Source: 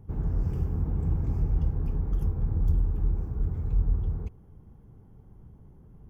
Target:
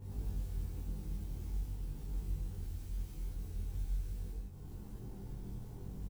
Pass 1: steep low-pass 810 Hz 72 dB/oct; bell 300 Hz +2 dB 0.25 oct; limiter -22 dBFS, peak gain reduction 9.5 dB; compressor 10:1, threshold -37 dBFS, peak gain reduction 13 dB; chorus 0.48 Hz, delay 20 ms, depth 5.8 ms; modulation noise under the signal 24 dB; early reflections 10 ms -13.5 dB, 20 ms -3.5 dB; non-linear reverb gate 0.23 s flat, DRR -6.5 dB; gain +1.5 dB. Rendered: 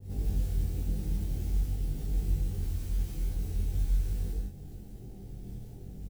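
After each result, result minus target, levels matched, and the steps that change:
compressor: peak gain reduction -9.5 dB; 1000 Hz band -5.0 dB
change: compressor 10:1, threshold -47.5 dBFS, peak gain reduction 22 dB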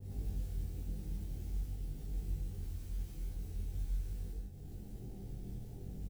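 1000 Hz band -3.5 dB
remove: steep low-pass 810 Hz 72 dB/oct

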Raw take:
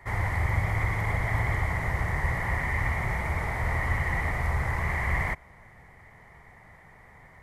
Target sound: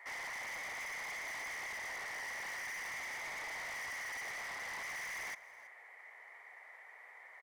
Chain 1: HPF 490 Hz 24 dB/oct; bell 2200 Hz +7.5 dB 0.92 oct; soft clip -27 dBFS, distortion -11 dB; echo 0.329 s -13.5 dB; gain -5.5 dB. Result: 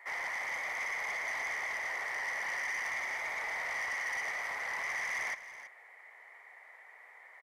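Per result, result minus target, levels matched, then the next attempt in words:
echo-to-direct +6.5 dB; soft clip: distortion -6 dB
HPF 490 Hz 24 dB/oct; bell 2200 Hz +7.5 dB 0.92 oct; soft clip -27 dBFS, distortion -11 dB; echo 0.329 s -20 dB; gain -5.5 dB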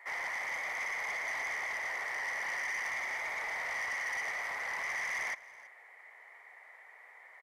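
soft clip: distortion -6 dB
HPF 490 Hz 24 dB/oct; bell 2200 Hz +7.5 dB 0.92 oct; soft clip -36 dBFS, distortion -6 dB; echo 0.329 s -20 dB; gain -5.5 dB

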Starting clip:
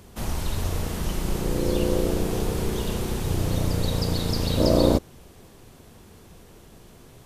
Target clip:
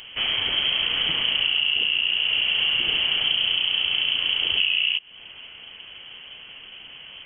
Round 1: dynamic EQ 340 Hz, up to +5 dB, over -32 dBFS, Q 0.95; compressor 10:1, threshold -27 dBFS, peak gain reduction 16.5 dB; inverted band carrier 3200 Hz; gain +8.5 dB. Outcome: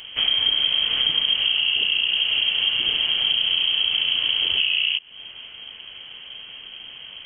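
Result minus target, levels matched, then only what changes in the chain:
125 Hz band -4.0 dB
add after dynamic EQ: HPF 93 Hz 12 dB/oct

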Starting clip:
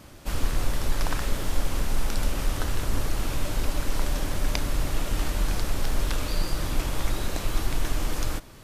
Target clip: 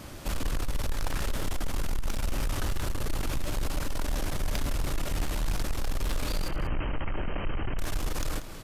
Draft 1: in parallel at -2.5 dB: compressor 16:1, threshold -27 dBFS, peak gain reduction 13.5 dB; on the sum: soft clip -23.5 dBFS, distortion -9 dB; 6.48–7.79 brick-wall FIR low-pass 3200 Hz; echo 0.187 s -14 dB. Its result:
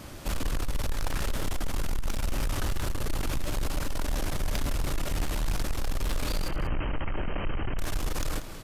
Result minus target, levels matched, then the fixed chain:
compressor: peak gain reduction -7 dB
in parallel at -2.5 dB: compressor 16:1, threshold -34.5 dBFS, peak gain reduction 20.5 dB; on the sum: soft clip -23.5 dBFS, distortion -10 dB; 6.48–7.79 brick-wall FIR low-pass 3200 Hz; echo 0.187 s -14 dB

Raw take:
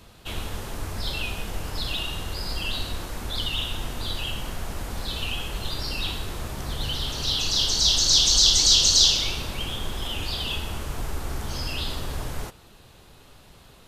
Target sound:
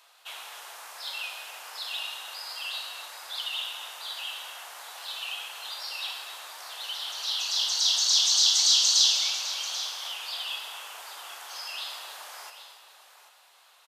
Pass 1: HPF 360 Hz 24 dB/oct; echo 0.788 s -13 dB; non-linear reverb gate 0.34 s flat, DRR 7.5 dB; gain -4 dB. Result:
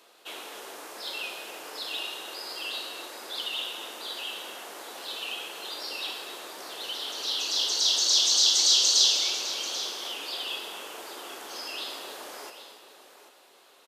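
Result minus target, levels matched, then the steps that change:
500 Hz band +10.0 dB
change: HPF 740 Hz 24 dB/oct

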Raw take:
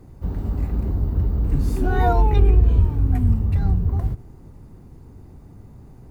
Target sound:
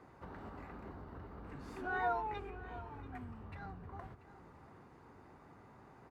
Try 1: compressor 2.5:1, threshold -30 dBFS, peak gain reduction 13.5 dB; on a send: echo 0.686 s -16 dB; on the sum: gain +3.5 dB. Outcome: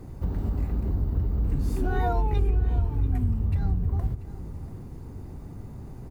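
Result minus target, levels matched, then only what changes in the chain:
1000 Hz band -11.5 dB
add after compressor: band-pass 1400 Hz, Q 1.2

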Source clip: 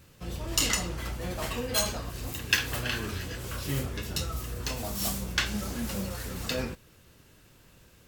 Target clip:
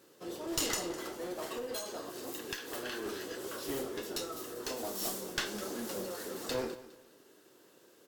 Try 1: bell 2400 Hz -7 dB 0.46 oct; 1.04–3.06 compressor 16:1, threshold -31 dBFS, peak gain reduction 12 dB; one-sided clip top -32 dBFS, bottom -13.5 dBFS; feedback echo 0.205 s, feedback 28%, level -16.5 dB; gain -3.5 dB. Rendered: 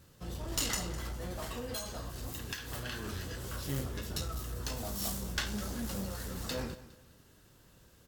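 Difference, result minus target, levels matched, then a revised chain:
500 Hz band -5.5 dB
resonant high-pass 360 Hz, resonance Q 2.6; bell 2400 Hz -7 dB 0.46 oct; 1.04–3.06 compressor 16:1, threshold -31 dBFS, peak gain reduction 12 dB; one-sided clip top -32 dBFS, bottom -13.5 dBFS; feedback echo 0.205 s, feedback 28%, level -16.5 dB; gain -3.5 dB

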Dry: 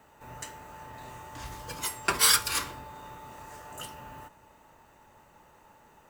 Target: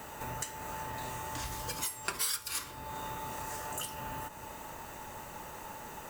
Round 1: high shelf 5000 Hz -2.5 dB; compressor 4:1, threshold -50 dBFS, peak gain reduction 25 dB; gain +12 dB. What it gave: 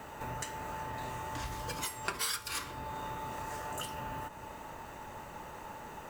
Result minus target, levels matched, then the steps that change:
8000 Hz band -2.5 dB
change: high shelf 5000 Hz +8 dB

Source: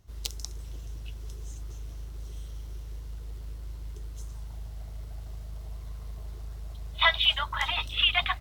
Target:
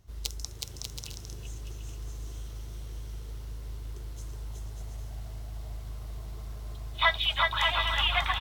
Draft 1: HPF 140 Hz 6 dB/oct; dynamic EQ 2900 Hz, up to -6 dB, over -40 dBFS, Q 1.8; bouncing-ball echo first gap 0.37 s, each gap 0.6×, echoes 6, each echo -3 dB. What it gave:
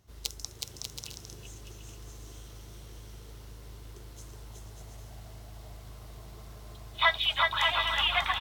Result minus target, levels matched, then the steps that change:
125 Hz band -11.5 dB
remove: HPF 140 Hz 6 dB/oct

